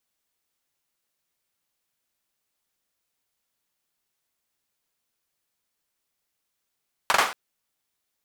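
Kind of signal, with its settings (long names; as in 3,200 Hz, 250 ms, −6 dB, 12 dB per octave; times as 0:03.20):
synth clap length 0.23 s, bursts 3, apart 42 ms, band 1,100 Hz, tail 0.39 s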